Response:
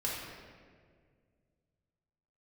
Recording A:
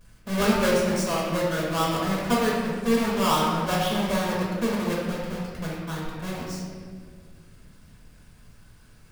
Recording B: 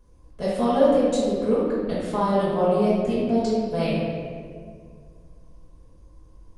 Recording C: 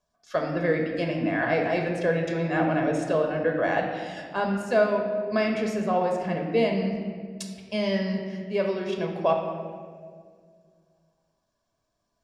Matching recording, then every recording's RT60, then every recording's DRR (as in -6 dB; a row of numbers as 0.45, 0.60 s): A; 1.9, 1.9, 1.9 s; -5.5, -10.5, 1.5 dB